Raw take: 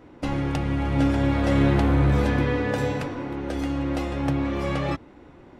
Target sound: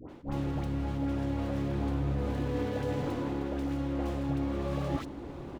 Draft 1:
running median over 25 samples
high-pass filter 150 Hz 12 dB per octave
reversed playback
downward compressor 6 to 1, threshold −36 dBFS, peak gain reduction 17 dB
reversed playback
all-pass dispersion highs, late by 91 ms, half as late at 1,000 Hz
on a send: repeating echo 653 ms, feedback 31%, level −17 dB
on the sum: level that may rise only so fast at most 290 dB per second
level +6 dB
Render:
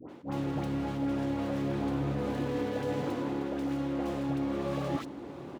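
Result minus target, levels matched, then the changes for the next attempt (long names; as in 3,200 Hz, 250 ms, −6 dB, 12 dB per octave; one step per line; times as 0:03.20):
125 Hz band −3.5 dB
remove: high-pass filter 150 Hz 12 dB per octave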